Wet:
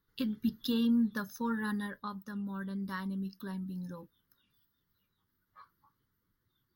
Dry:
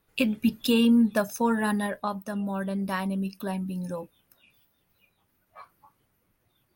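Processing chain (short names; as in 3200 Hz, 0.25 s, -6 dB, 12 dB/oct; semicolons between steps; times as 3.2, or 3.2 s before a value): fixed phaser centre 2500 Hz, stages 6; gain -6.5 dB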